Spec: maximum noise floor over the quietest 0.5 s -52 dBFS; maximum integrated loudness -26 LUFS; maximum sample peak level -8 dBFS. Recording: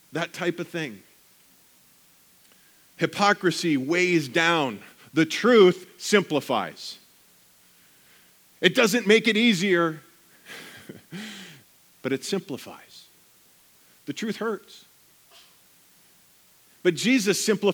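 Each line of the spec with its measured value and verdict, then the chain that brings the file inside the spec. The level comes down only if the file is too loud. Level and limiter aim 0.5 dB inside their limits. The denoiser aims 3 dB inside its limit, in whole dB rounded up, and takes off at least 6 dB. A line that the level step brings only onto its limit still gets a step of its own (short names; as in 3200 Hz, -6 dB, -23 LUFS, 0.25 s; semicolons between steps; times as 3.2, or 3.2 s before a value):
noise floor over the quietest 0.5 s -58 dBFS: OK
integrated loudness -23.0 LUFS: fail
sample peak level -2.0 dBFS: fail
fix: gain -3.5 dB; limiter -8.5 dBFS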